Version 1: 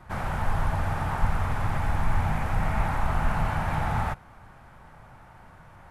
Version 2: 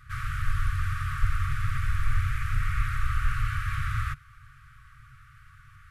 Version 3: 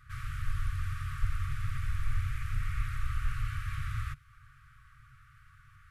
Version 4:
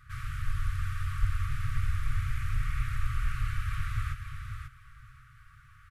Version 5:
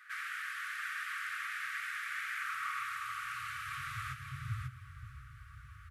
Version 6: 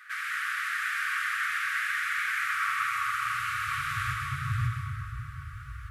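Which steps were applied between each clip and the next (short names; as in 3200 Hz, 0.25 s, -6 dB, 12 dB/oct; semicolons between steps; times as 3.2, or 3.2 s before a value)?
FFT band-reject 150–1100 Hz
dynamic EQ 1400 Hz, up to -5 dB, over -49 dBFS, Q 1.3; gain -5.5 dB
feedback echo 0.539 s, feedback 16%, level -6.5 dB; gain +1.5 dB
high-pass sweep 1700 Hz -> 61 Hz, 2.3–5.21; gain +1 dB
plate-style reverb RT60 2.8 s, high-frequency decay 0.5×, pre-delay 85 ms, DRR -0.5 dB; gain +6.5 dB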